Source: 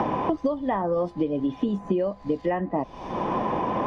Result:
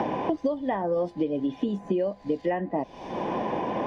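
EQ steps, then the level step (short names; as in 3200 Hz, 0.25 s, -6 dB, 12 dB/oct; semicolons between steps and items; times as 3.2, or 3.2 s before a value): low shelf 120 Hz -11 dB; bell 1100 Hz -7 dB 0.49 oct; notch 1300 Hz, Q 10; 0.0 dB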